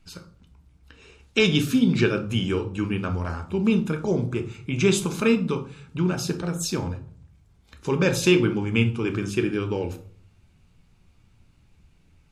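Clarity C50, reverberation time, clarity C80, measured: 12.5 dB, 0.50 s, 17.0 dB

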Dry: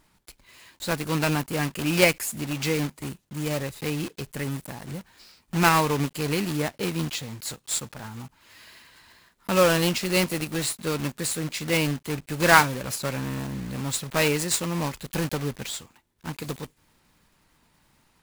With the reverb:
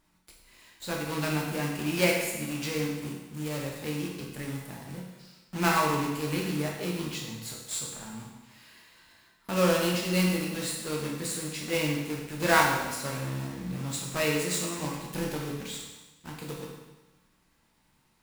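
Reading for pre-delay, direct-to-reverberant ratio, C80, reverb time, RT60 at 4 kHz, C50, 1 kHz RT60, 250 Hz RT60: 13 ms, -1.5 dB, 5.0 dB, 1.1 s, 1.1 s, 2.5 dB, 1.1 s, 1.1 s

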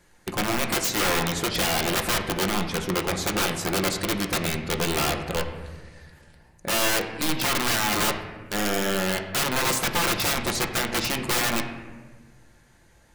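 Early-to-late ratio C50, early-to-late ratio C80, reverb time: 7.5 dB, 9.0 dB, 1.4 s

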